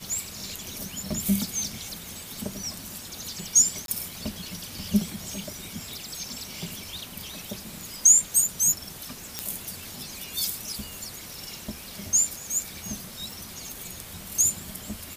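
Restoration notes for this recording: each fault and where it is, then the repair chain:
3.86–3.88 s: dropout 22 ms
9.39 s: pop -11 dBFS
13.32 s: pop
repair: de-click; interpolate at 3.86 s, 22 ms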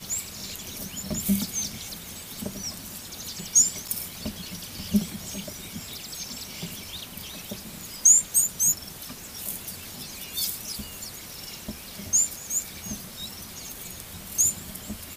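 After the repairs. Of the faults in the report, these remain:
nothing left

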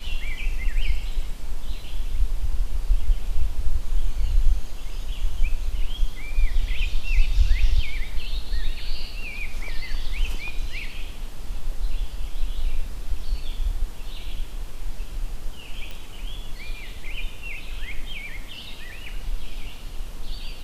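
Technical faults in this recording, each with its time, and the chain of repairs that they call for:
15.91 s: pop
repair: de-click

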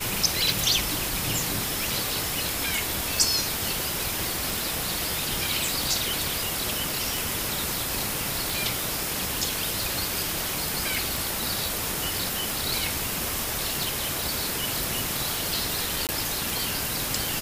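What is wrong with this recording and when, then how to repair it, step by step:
tick 45 rpm
10.95 s: pop
16.07–16.09 s: dropout 18 ms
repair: de-click; interpolate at 16.07 s, 18 ms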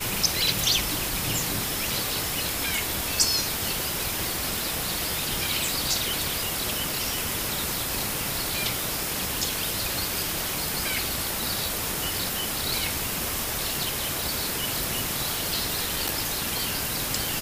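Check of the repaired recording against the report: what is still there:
nothing left

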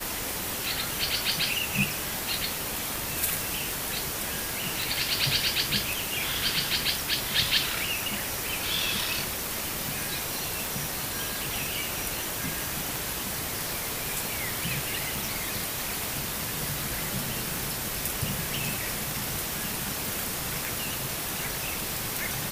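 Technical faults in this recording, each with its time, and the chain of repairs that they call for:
tick 78 rpm
4.82 s: pop
15.16 s: pop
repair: de-click

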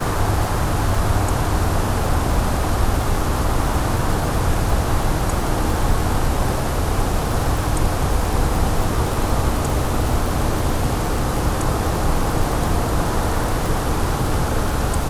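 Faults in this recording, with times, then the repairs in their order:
crackle 42 per s -22 dBFS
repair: de-click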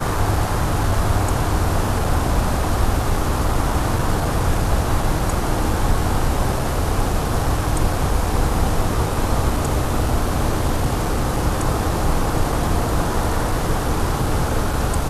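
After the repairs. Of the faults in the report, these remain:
nothing left

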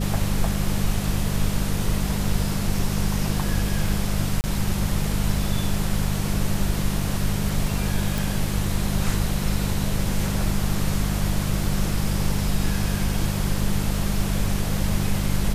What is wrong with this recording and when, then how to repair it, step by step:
hum 50 Hz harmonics 4 -26 dBFS
4.41–4.44 s: dropout 29 ms
8.18 s: pop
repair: de-click; de-hum 50 Hz, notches 4; interpolate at 4.41 s, 29 ms

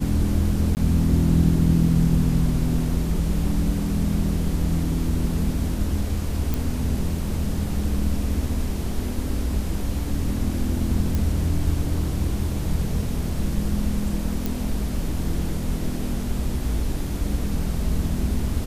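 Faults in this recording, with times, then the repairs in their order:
0.75–0.77 s: dropout 19 ms
6.54 s: pop
11.15 s: pop
14.46 s: pop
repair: de-click; interpolate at 0.75 s, 19 ms

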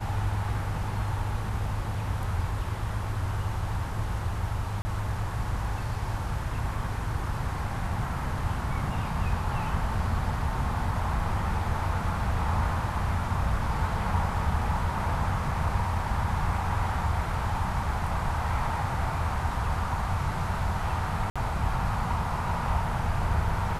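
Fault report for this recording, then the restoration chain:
4.82–4.85 s: dropout 30 ms
21.30–21.36 s: dropout 56 ms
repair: interpolate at 4.82 s, 30 ms; interpolate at 21.30 s, 56 ms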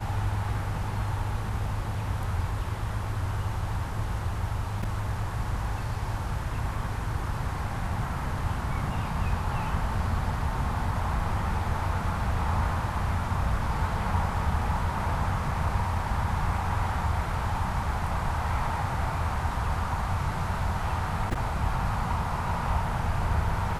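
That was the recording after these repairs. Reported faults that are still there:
nothing left

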